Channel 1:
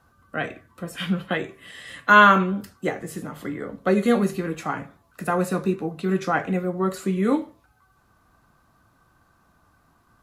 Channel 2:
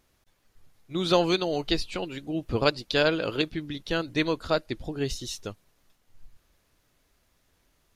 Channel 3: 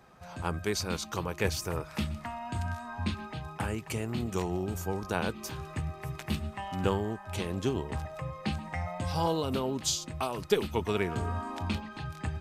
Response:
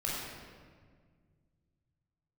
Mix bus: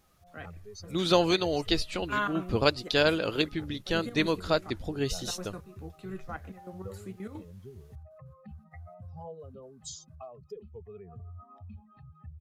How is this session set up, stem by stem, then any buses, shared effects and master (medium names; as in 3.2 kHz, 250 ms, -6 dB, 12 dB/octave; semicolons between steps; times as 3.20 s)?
-17.0 dB, 0.00 s, no send, trance gate ".x..xx.xxx.x" 198 bpm -12 dB
-1.0 dB, 0.00 s, no send, none
-16.0 dB, 0.00 s, no send, spectral contrast enhancement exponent 2.3; comb 1.6 ms, depth 88%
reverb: none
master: treble shelf 7.1 kHz +4 dB